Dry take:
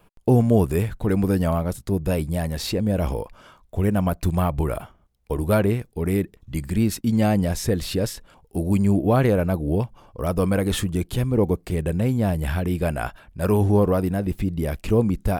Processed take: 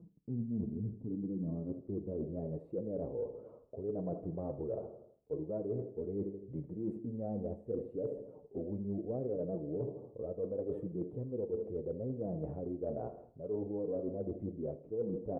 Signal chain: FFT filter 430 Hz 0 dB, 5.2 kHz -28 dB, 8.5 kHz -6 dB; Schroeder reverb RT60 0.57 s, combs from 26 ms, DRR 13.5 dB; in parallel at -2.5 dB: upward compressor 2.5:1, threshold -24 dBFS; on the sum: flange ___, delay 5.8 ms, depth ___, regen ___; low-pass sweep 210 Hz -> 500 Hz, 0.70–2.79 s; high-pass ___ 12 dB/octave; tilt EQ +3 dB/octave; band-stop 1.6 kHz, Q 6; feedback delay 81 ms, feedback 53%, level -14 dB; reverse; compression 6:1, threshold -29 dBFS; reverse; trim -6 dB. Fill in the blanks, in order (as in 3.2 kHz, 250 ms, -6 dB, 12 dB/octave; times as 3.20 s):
0.73 Hz, 3.6 ms, +22%, 56 Hz